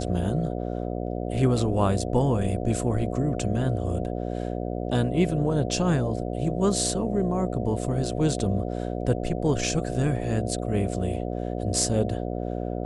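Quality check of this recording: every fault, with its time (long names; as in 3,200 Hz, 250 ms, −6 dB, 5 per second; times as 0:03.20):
mains buzz 60 Hz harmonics 12 −30 dBFS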